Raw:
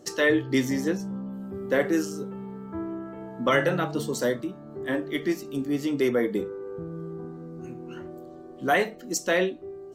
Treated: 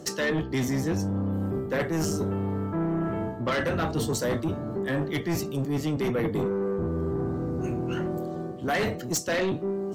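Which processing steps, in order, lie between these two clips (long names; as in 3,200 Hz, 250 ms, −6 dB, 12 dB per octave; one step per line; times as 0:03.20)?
sub-octave generator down 1 octave, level +4 dB
reversed playback
downward compressor 8 to 1, threshold −30 dBFS, peak gain reduction 14.5 dB
reversed playback
high-pass filter 190 Hz 6 dB per octave
sine wavefolder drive 7 dB, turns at −21.5 dBFS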